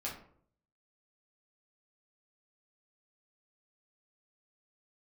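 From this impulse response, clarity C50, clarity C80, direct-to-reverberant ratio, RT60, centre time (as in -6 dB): 6.0 dB, 11.0 dB, -5.0 dB, 0.60 s, 29 ms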